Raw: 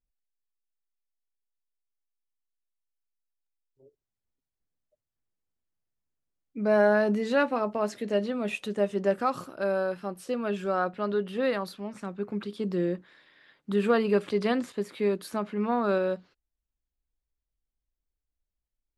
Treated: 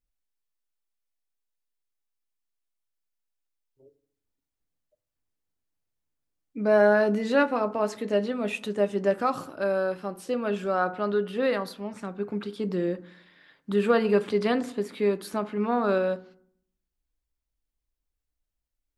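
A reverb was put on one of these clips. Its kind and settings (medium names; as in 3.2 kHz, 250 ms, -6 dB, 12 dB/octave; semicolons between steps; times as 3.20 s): FDN reverb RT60 0.62 s, low-frequency decay 1.4×, high-frequency decay 0.4×, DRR 12 dB; trim +1.5 dB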